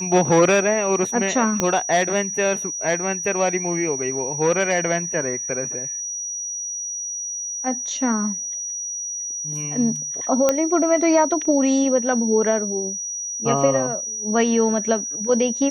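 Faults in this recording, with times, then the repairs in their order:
whistle 5,800 Hz −26 dBFS
0:01.60: click −5 dBFS
0:10.49: click −4 dBFS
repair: click removal
notch filter 5,800 Hz, Q 30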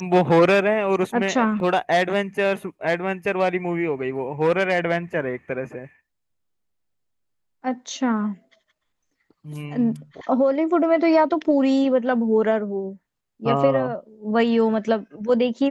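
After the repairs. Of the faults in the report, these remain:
0:01.60: click
0:10.49: click

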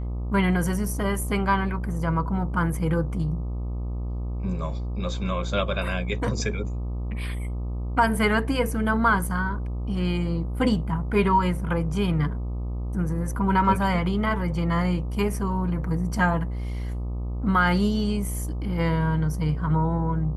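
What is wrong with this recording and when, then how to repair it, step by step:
mains buzz 60 Hz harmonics 21 −29 dBFS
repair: hum removal 60 Hz, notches 21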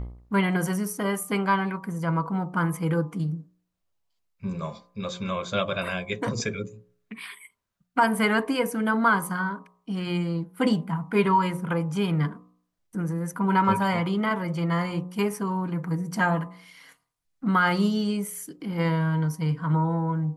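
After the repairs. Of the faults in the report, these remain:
none of them is left

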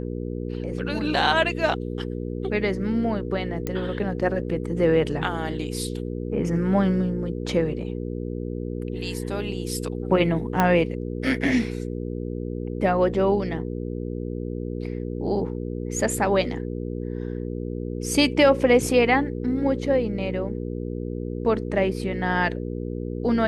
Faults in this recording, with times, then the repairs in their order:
mains hum 60 Hz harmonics 8 −30 dBFS
0:03.67: click −13 dBFS
0:10.60: click −7 dBFS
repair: click removal
hum removal 60 Hz, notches 8

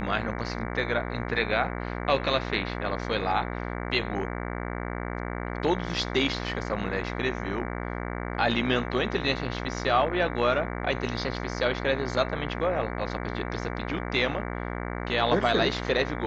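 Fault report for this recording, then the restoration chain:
mains buzz 60 Hz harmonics 38 −33 dBFS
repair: hum removal 60 Hz, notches 38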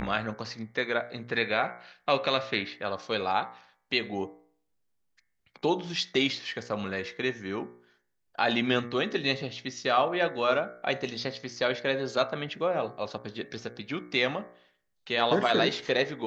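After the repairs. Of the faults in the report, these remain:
none of them is left

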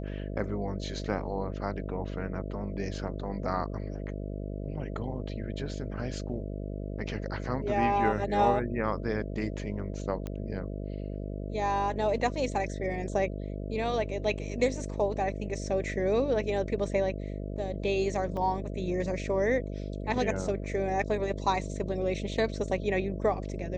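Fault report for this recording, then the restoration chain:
mains buzz 50 Hz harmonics 13 −36 dBFS
0:10.27: click −23 dBFS
0:18.37: drop-out 2.4 ms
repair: click removal
hum removal 50 Hz, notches 13
repair the gap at 0:18.37, 2.4 ms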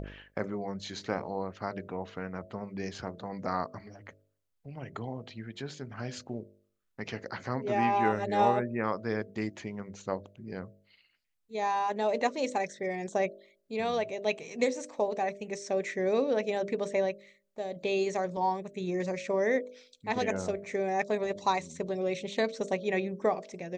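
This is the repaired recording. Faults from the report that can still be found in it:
none of them is left

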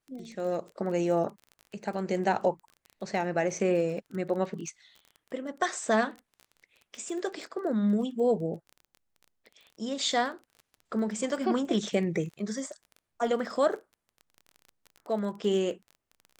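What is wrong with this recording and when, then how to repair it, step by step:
surface crackle 21 per second −38 dBFS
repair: click removal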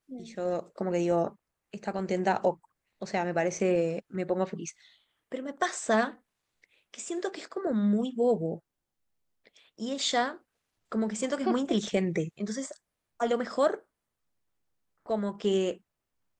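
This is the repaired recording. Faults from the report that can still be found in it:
none of them is left

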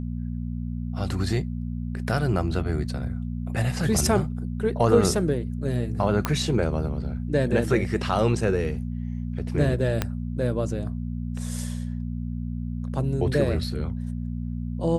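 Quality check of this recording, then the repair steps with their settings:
mains hum 60 Hz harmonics 4 −30 dBFS
0:06.25: click −9 dBFS
0:10.02: click −9 dBFS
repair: click removal
hum removal 60 Hz, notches 4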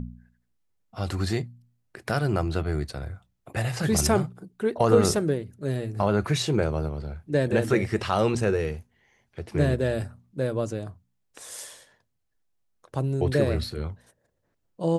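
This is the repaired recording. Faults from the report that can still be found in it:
0:10.02: click

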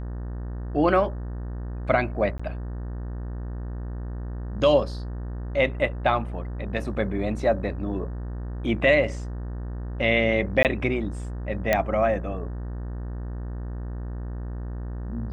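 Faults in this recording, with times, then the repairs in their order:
mains buzz 60 Hz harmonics 31 −32 dBFS
0:02.38–0:02.40: drop-out 15 ms
0:10.63–0:10.65: drop-out 18 ms
0:11.73: click −7 dBFS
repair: click removal
hum removal 60 Hz, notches 31
repair the gap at 0:02.38, 15 ms
repair the gap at 0:10.63, 18 ms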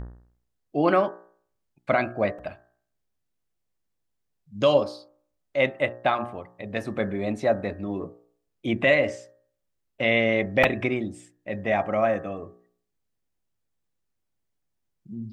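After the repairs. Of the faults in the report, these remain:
none of them is left

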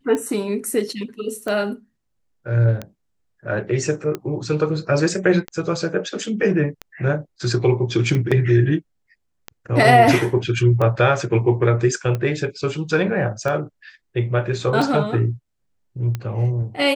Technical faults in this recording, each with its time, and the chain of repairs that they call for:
scratch tick 45 rpm −13 dBFS
0:08.31–0:08.32: drop-out 5.9 ms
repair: click removal
repair the gap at 0:08.31, 5.9 ms

